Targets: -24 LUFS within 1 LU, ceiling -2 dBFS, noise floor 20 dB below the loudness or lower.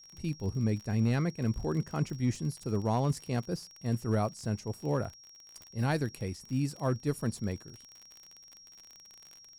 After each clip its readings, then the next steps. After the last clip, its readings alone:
ticks 44/s; steady tone 5600 Hz; tone level -52 dBFS; loudness -33.0 LUFS; peak -18.5 dBFS; loudness target -24.0 LUFS
-> de-click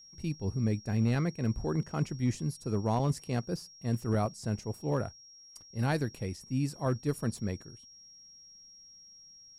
ticks 0/s; steady tone 5600 Hz; tone level -52 dBFS
-> notch 5600 Hz, Q 30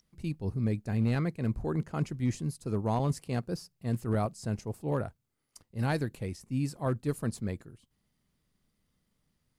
steady tone none; loudness -33.0 LUFS; peak -19.0 dBFS; loudness target -24.0 LUFS
-> gain +9 dB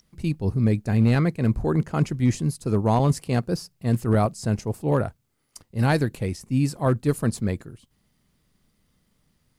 loudness -24.0 LUFS; peak -10.0 dBFS; noise floor -69 dBFS

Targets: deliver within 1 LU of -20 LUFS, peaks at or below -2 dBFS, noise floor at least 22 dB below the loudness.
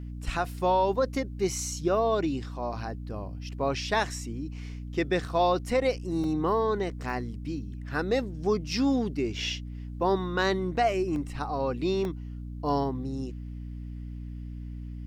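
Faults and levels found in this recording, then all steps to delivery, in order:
dropouts 5; longest dropout 1.2 ms; hum 60 Hz; harmonics up to 300 Hz; hum level -35 dBFS; loudness -29.0 LUFS; peak -14.5 dBFS; loudness target -20.0 LUFS
-> interpolate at 2.73/6.24/7.1/11.16/12.05, 1.2 ms; de-hum 60 Hz, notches 5; gain +9 dB

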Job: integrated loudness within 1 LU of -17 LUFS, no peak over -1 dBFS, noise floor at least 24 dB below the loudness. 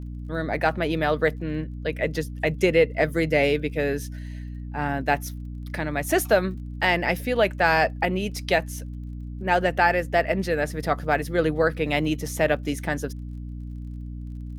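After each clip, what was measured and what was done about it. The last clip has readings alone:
ticks 25/s; hum 60 Hz; harmonics up to 300 Hz; hum level -32 dBFS; loudness -24.0 LUFS; peak -5.5 dBFS; loudness target -17.0 LUFS
-> de-click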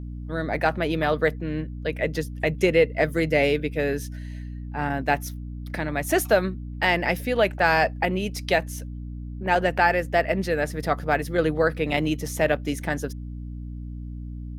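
ticks 0.41/s; hum 60 Hz; harmonics up to 300 Hz; hum level -32 dBFS
-> notches 60/120/180/240/300 Hz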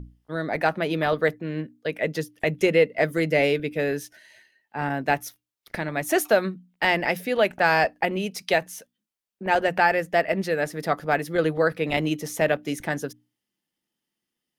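hum none; loudness -24.5 LUFS; peak -6.0 dBFS; loudness target -17.0 LUFS
-> gain +7.5 dB; limiter -1 dBFS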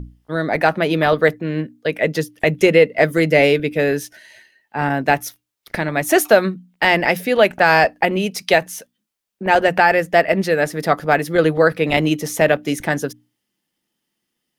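loudness -17.0 LUFS; peak -1.0 dBFS; noise floor -77 dBFS

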